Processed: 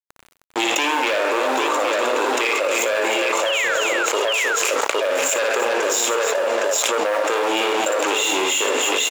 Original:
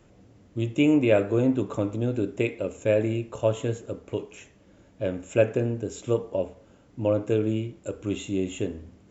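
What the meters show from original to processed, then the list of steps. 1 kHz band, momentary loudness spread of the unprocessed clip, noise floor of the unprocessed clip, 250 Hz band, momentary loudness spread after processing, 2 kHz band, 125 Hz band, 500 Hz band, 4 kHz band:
+20.5 dB, 13 LU, -56 dBFS, -3.5 dB, 2 LU, +18.5 dB, under -25 dB, +6.0 dB, +21.5 dB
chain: delay 230 ms -21 dB; waveshaping leveller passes 3; gate -49 dBFS, range -25 dB; Bessel high-pass 880 Hz, order 4; in parallel at +1 dB: peak limiter -21 dBFS, peak gain reduction 11 dB; on the sum: bit crusher 12-bit; painted sound fall, 3.46–3.75 s, 1.3–3.4 kHz -20 dBFS; on a send: multi-tap echo 58/129/311/814 ms -4/-14.5/-8/-6 dB; on the sum: hard clipper -10 dBFS, distortion -29 dB; level flattener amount 100%; trim -5 dB

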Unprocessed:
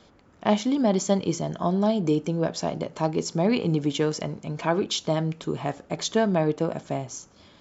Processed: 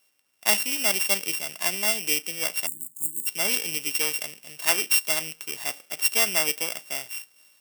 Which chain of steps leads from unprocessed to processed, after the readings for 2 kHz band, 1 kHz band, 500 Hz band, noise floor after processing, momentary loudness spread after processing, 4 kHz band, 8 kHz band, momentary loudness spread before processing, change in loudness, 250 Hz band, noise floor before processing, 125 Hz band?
+10.0 dB, -6.5 dB, -10.5 dB, -66 dBFS, 10 LU, +6.5 dB, no reading, 9 LU, +2.0 dB, -17.5 dB, -56 dBFS, -21.5 dB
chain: sorted samples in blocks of 16 samples; bass shelf 350 Hz -9.5 dB; spectral selection erased 2.67–3.27 s, 360–6500 Hz; tilt EQ +4 dB/octave; three bands expanded up and down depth 40%; trim -3 dB

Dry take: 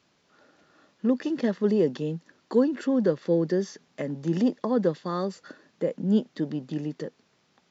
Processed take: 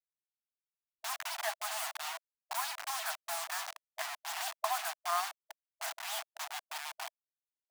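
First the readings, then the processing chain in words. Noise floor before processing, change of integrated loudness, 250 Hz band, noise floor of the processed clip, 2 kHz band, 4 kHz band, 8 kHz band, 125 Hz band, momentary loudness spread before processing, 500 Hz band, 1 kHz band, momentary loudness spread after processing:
-68 dBFS, -10.5 dB, under -40 dB, under -85 dBFS, +4.0 dB, +6.5 dB, no reading, under -40 dB, 11 LU, -20.0 dB, +3.0 dB, 9 LU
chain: send-on-delta sampling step -30.5 dBFS; brick-wall FIR high-pass 640 Hz; trim +2.5 dB

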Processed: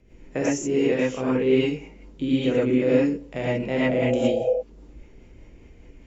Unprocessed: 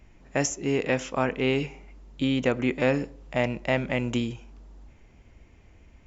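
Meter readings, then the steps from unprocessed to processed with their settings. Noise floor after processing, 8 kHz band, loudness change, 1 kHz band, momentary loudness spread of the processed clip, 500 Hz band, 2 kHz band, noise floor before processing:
-50 dBFS, no reading, +4.0 dB, -2.0 dB, 8 LU, +6.0 dB, -1.5 dB, -55 dBFS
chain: spectral replace 3.80–4.46 s, 420–870 Hz before; rotary cabinet horn 5 Hz; tone controls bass -7 dB, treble 0 dB; gated-style reverb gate 140 ms rising, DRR -8 dB; in parallel at -1.5 dB: compression, threshold -32 dBFS, peak gain reduction 17.5 dB; on the sum: resonant low shelf 580 Hz +7 dB, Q 1.5; trim -8.5 dB

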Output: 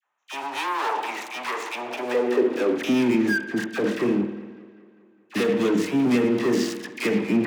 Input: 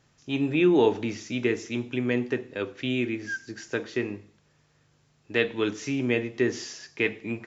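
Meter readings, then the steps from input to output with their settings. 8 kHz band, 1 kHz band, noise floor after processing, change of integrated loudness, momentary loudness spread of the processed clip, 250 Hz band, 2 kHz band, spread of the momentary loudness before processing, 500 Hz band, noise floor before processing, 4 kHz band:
no reading, +10.0 dB, -58 dBFS, +3.5 dB, 10 LU, +5.0 dB, +2.5 dB, 12 LU, +3.0 dB, -65 dBFS, +2.5 dB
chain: local Wiener filter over 9 samples; hum notches 50/100/150 Hz; waveshaping leveller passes 5; peak limiter -20.5 dBFS, peak gain reduction 11 dB; high-pass sweep 910 Hz -> 190 Hz, 1.59–2.96 s; phase dispersion lows, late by 62 ms, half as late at 980 Hz; tape echo 201 ms, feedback 66%, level -19 dB, low-pass 4.9 kHz; spring tank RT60 1.3 s, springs 49 ms, chirp 75 ms, DRR 10.5 dB

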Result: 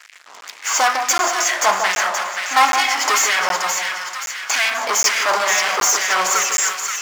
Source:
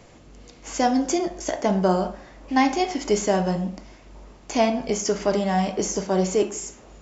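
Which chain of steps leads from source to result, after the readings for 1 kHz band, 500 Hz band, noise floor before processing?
+8.5 dB, -3.5 dB, -49 dBFS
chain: waveshaping leveller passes 5; LFO high-pass sine 2.2 Hz 970–2100 Hz; on a send: two-band feedback delay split 1.2 kHz, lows 154 ms, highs 527 ms, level -5 dB; on the sum: crackling interface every 0.77 s, samples 512, zero, from 0.41 s; trim -2.5 dB

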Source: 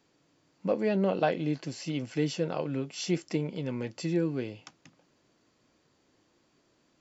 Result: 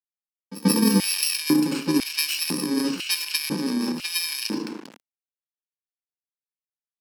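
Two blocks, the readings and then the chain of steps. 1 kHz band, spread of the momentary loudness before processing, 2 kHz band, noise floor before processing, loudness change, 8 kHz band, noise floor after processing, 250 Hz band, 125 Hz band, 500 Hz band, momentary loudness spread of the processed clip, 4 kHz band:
+1.5 dB, 8 LU, +10.5 dB, -70 dBFS, +8.0 dB, no reading, under -85 dBFS, +8.5 dB, +1.0 dB, -2.5 dB, 8 LU, +17.0 dB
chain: bit-reversed sample order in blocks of 64 samples; resonant low shelf 150 Hz -7 dB, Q 3; FDN reverb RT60 1 s, low-frequency decay 0.9×, high-frequency decay 0.55×, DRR 7.5 dB; in parallel at -5.5 dB: saturation -29 dBFS, distortion -8 dB; on the sum: level-controlled noise filter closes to 2.6 kHz, open at -22 dBFS; peaking EQ 4.8 kHz +11 dB 0.26 oct; pre-echo 134 ms -16 dB; transient shaper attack +8 dB, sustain +12 dB; crossover distortion -44 dBFS; reverse; upward compressor, threshold -30 dBFS; reverse; LFO high-pass square 1 Hz 230–2600 Hz

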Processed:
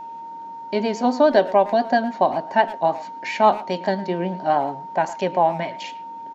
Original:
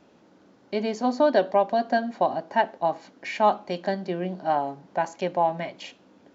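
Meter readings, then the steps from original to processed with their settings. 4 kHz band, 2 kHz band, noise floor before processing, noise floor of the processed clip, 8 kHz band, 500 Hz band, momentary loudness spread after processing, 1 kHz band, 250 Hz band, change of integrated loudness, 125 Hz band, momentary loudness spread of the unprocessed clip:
+4.5 dB, +4.5 dB, -58 dBFS, -35 dBFS, no reading, +4.5 dB, 16 LU, +5.0 dB, +4.5 dB, +4.5 dB, +4.5 dB, 12 LU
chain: speakerphone echo 110 ms, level -16 dB; vibrato 7.3 Hz 46 cents; whistle 920 Hz -37 dBFS; trim +4.5 dB

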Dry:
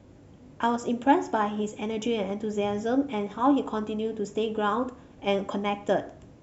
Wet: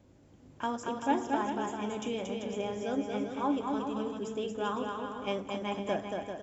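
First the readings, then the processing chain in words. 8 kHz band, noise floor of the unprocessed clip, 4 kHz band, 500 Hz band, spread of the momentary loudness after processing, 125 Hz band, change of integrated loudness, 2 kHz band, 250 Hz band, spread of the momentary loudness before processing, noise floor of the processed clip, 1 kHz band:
no reading, -52 dBFS, -4.5 dB, -6.5 dB, 5 LU, -6.0 dB, -6.5 dB, -5.5 dB, -6.5 dB, 7 LU, -59 dBFS, -6.0 dB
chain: treble shelf 4.4 kHz +5 dB; bouncing-ball echo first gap 230 ms, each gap 0.7×, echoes 5; trim -8.5 dB

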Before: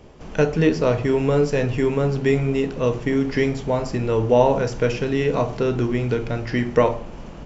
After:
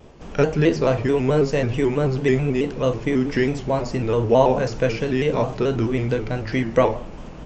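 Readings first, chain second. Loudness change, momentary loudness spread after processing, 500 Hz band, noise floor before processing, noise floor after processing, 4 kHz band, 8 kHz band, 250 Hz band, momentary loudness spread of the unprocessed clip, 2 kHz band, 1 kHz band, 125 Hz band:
0.0 dB, 6 LU, 0.0 dB, -37 dBFS, -37 dBFS, +1.0 dB, no reading, 0.0 dB, 6 LU, 0.0 dB, +0.5 dB, 0.0 dB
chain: vibrato with a chosen wave square 4.6 Hz, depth 100 cents

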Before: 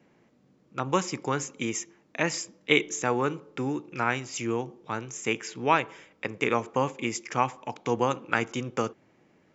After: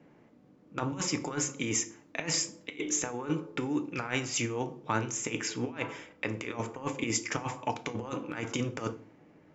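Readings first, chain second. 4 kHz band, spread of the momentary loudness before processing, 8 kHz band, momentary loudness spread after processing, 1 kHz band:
-2.0 dB, 10 LU, no reading, 7 LU, -9.0 dB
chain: compressor with a negative ratio -31 dBFS, ratio -0.5; FDN reverb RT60 0.4 s, low-frequency decay 1.45×, high-frequency decay 0.85×, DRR 8.5 dB; tape noise reduction on one side only decoder only; trim -1 dB

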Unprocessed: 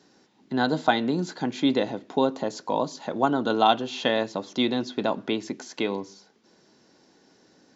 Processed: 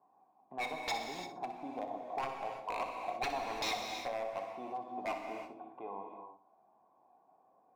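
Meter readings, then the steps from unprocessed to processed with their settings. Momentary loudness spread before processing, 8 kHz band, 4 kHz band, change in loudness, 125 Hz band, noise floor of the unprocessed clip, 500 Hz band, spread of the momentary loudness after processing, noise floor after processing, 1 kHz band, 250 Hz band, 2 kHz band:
9 LU, no reading, -13.0 dB, -13.5 dB, -22.5 dB, -61 dBFS, -15.0 dB, 10 LU, -70 dBFS, -10.5 dB, -23.0 dB, -10.5 dB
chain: block-companded coder 5-bit; in parallel at -1 dB: compression 12:1, threshold -36 dBFS, peak gain reduction 22.5 dB; on the sum: cascade formant filter a; wavefolder -30 dBFS; flange 0.29 Hz, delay 0.9 ms, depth 2.5 ms, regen +72%; on a send: flutter echo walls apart 10.5 m, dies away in 0.33 s; on the sum: gated-style reverb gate 370 ms flat, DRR 3 dB; trim +4 dB

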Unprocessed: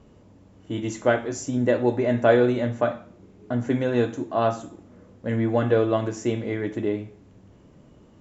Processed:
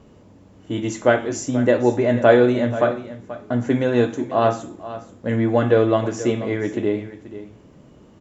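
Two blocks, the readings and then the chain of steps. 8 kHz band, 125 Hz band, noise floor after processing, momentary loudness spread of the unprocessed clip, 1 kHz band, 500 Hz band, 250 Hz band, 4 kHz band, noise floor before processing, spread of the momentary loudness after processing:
no reading, +3.0 dB, -49 dBFS, 12 LU, +4.5 dB, +4.5 dB, +4.0 dB, +4.5 dB, -53 dBFS, 18 LU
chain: bass shelf 79 Hz -5 dB; on a send: delay 483 ms -14.5 dB; on the sum: trim +4.5 dB

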